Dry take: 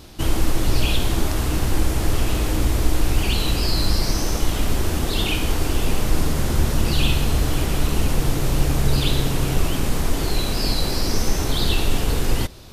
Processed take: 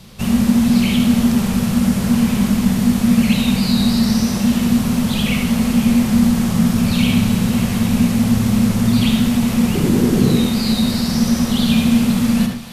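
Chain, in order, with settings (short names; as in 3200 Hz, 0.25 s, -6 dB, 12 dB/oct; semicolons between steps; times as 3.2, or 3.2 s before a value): 9.74–10.39 band shelf 520 Hz +16 dB 1 oct; frequency shift -250 Hz; thinning echo 0.27 s, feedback 72%, high-pass 450 Hz, level -15 dB; on a send at -3.5 dB: reverb RT60 0.45 s, pre-delay 57 ms; on the sum: gain +1 dB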